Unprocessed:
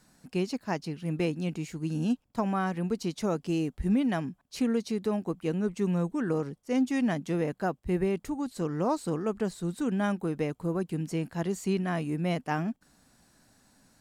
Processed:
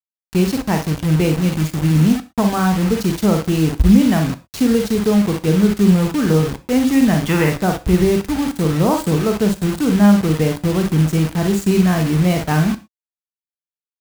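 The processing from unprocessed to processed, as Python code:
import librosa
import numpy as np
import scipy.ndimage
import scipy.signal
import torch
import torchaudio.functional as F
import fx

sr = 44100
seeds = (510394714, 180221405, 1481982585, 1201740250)

p1 = fx.spec_box(x, sr, start_s=7.21, length_s=0.29, low_hz=800.0, high_hz=3600.0, gain_db=12)
p2 = p1 + fx.room_early_taps(p1, sr, ms=(44, 59), db=(-7.0, -9.5), dry=0)
p3 = fx.quant_dither(p2, sr, seeds[0], bits=6, dither='none')
p4 = fx.peak_eq(p3, sr, hz=60.0, db=13.5, octaves=2.6)
p5 = fx.rev_gated(p4, sr, seeds[1], gate_ms=140, shape='falling', drr_db=11.0)
y = F.gain(torch.from_numpy(p5), 8.5).numpy()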